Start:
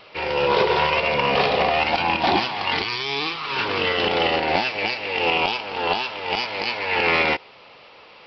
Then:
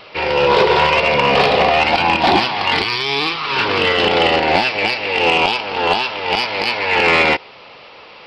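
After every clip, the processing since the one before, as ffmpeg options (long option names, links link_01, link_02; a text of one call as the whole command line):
ffmpeg -i in.wav -af "acontrast=81" out.wav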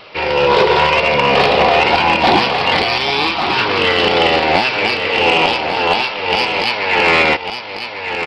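ffmpeg -i in.wav -af "aecho=1:1:1147:0.422,volume=1dB" out.wav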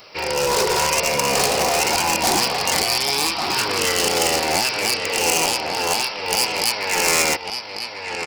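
ffmpeg -i in.wav -af "asoftclip=type=hard:threshold=-9dB,aexciter=amount=10.1:drive=3.5:freq=5100,volume=-7dB" out.wav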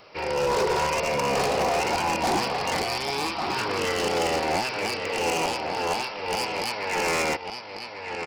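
ffmpeg -i in.wav -af "lowpass=frequency=1800:poles=1,volume=-2.5dB" out.wav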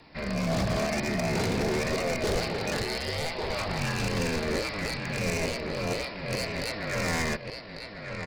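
ffmpeg -i in.wav -af "afreqshift=-320,volume=-3.5dB" out.wav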